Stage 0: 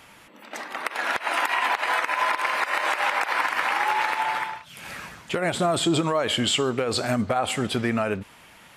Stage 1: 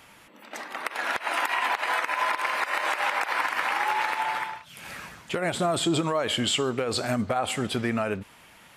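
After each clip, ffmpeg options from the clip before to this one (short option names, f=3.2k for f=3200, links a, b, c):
-af "highshelf=f=12k:g=3,volume=-2.5dB"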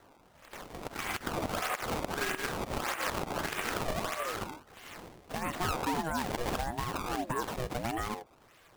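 -af "acrusher=samples=21:mix=1:aa=0.000001:lfo=1:lforange=33.6:lforate=1.6,aeval=exprs='val(0)*sin(2*PI*440*n/s+440*0.45/0.86*sin(2*PI*0.86*n/s))':c=same,volume=-4.5dB"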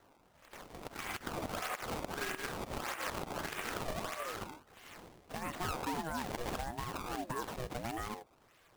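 -af "acrusher=bits=4:mode=log:mix=0:aa=0.000001,volume=-5.5dB"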